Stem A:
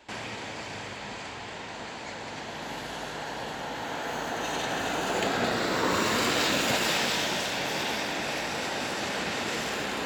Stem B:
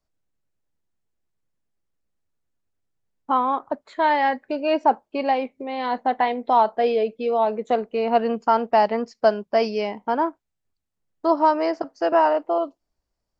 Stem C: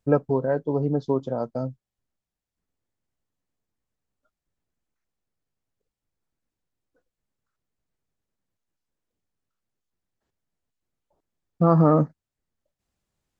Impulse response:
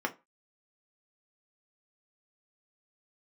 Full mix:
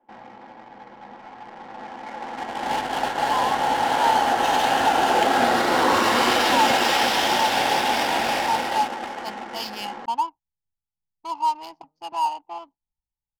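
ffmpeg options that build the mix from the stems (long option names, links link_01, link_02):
-filter_complex "[0:a]equalizer=frequency=800:width_type=o:width=0.33:gain=10,equalizer=frequency=3150:width_type=o:width=0.33:gain=4,equalizer=frequency=5000:width_type=o:width=0.33:gain=7,dynaudnorm=framelen=210:gausssize=17:maxgain=9dB,volume=-3dB,asplit=2[link_01][link_02];[link_02]volume=-11.5dB[link_03];[1:a]firequalizer=gain_entry='entry(170,0);entry(250,-10);entry(600,-21);entry(850,11);entry(1500,-19);entry(2900,13)':delay=0.05:min_phase=1,dynaudnorm=framelen=150:gausssize=9:maxgain=11.5dB,volume=-12.5dB[link_04];[2:a]volume=-17.5dB[link_05];[link_01][link_05]amix=inputs=2:normalize=0,agate=range=-46dB:threshold=-27dB:ratio=16:detection=peak,alimiter=limit=-14dB:level=0:latency=1:release=221,volume=0dB[link_06];[3:a]atrim=start_sample=2205[link_07];[link_03][link_07]afir=irnorm=-1:irlink=0[link_08];[link_04][link_06][link_08]amix=inputs=3:normalize=0,adynamicsmooth=sensitivity=7:basefreq=710"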